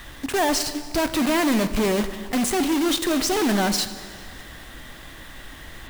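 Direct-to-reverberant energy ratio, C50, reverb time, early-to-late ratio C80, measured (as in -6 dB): 10.5 dB, 12.0 dB, 2.0 s, 13.0 dB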